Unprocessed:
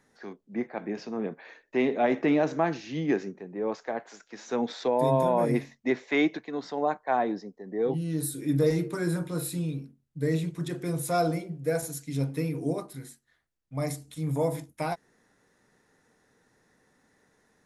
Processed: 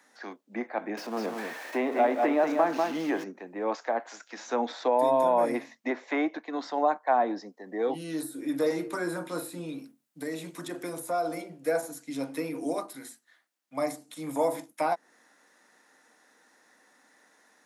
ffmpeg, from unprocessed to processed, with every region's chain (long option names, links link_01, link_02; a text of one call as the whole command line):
ffmpeg -i in.wav -filter_complex "[0:a]asettb=1/sr,asplit=3[link_01][link_02][link_03];[link_01]atrim=end=0.974[link_04];[link_02]atrim=start=0.97:end=3.24,asetpts=PTS-STARTPTS,afade=type=in:duration=0.004:curve=qsin,afade=type=out:start_time=2.266:duration=0.004:curve=qsin,aeval=exprs='val(0)+0.5*0.01*sgn(val(0))':channel_layout=same,aecho=1:1:193:0.501,atrim=end_sample=100107[link_05];[link_03]atrim=start=3.236[link_06];[link_04][link_05]acrossfade=duration=0.004:curve1=hsin:curve2=qsin[link_07];[link_07][link_06]acrossfade=duration=0.004:curve1=qsin:curve2=hsin,asettb=1/sr,asplit=3[link_08][link_09][link_10];[link_08]atrim=end=9.784[link_11];[link_09]atrim=start=9.78:end=11.42,asetpts=PTS-STARTPTS,afade=type=in:duration=0.004:curve=qsin,afade=type=out:start_time=1.636:duration=0.004:curve=qsin,highshelf=frequency=8300:gain=7,acompressor=threshold=-28dB:ratio=6:attack=3.2:release=140:knee=1:detection=peak[link_12];[link_10]atrim=start=11.416[link_13];[link_11][link_12]acrossfade=duration=0.004:curve1=hsin:curve2=qsin[link_14];[link_14][link_13]acrossfade=duration=0.004:curve1=qsin:curve2=hsin,highpass=frequency=290:width=0.5412,highpass=frequency=290:width=1.3066,equalizer=frequency=410:width_type=o:width=0.54:gain=-11.5,acrossover=split=420|1400[link_15][link_16][link_17];[link_15]acompressor=threshold=-38dB:ratio=4[link_18];[link_16]acompressor=threshold=-28dB:ratio=4[link_19];[link_17]acompressor=threshold=-51dB:ratio=4[link_20];[link_18][link_19][link_20]amix=inputs=3:normalize=0,volume=7dB" out.wav